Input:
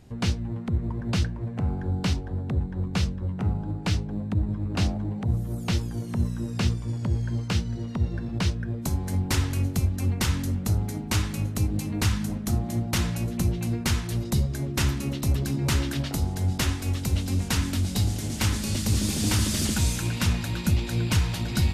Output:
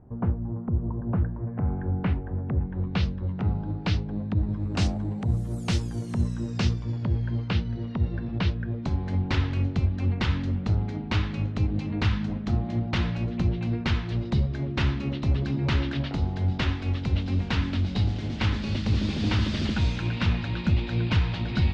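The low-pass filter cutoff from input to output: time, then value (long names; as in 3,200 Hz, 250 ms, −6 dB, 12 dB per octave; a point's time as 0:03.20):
low-pass filter 24 dB per octave
0:01.12 1,200 Hz
0:01.77 2,200 Hz
0:02.56 2,200 Hz
0:03.08 4,700 Hz
0:04.32 4,700 Hz
0:04.95 10,000 Hz
0:06.10 10,000 Hz
0:07.15 3,900 Hz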